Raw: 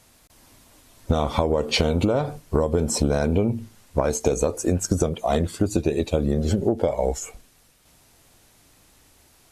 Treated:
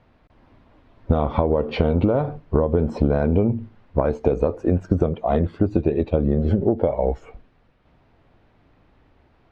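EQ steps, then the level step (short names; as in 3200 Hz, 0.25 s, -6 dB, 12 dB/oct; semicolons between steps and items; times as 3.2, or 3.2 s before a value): air absorption 350 m; high shelf 2700 Hz -9 dB; high shelf 11000 Hz -8 dB; +3.0 dB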